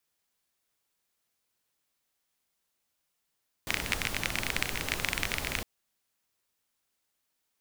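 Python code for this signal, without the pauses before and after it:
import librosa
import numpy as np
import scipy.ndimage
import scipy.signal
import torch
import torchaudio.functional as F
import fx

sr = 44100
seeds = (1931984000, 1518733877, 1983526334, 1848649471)

y = fx.rain(sr, seeds[0], length_s=1.96, drops_per_s=23.0, hz=2200.0, bed_db=-1)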